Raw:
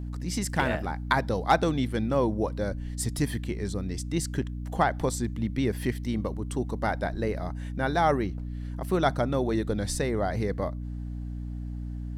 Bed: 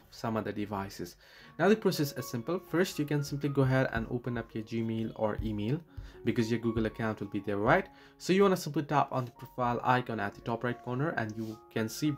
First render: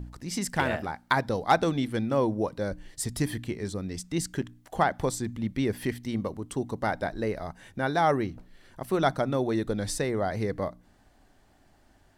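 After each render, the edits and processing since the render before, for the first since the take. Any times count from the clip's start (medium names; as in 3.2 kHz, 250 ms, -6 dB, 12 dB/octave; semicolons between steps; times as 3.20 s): de-hum 60 Hz, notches 5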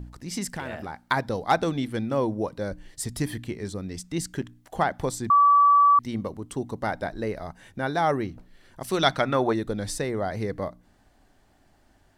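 0.46–1.09 s: compression 4:1, threshold -30 dBFS; 5.30–5.99 s: bleep 1.15 kHz -13.5 dBFS; 8.80–9.52 s: peaking EQ 7.9 kHz -> 950 Hz +13 dB 2 oct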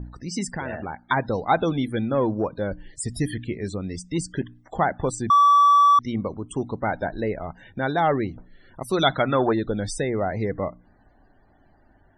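in parallel at -6 dB: overload inside the chain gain 22.5 dB; on the sum: loudest bins only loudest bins 64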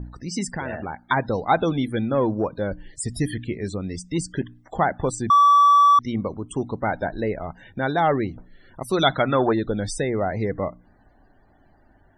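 trim +1 dB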